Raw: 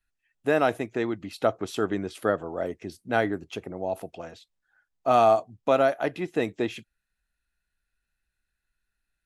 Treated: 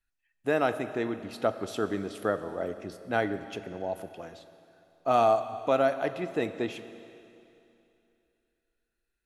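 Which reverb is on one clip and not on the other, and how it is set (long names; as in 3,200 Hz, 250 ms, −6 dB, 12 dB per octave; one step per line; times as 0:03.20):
four-comb reverb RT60 2.8 s, combs from 30 ms, DRR 11 dB
level −3.5 dB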